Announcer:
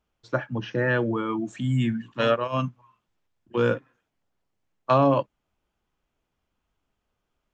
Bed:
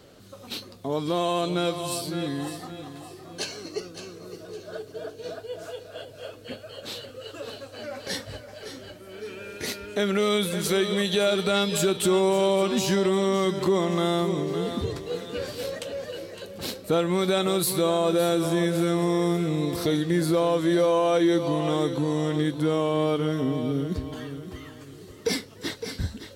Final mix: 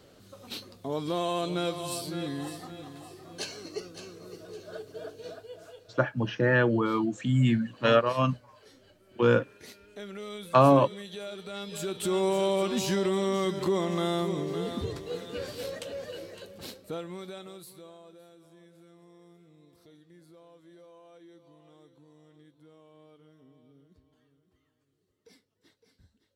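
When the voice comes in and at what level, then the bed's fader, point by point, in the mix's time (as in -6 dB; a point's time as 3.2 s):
5.65 s, +0.5 dB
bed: 5.15 s -4.5 dB
6.14 s -17 dB
11.48 s -17 dB
12.24 s -4.5 dB
16.3 s -4.5 dB
18.31 s -32.5 dB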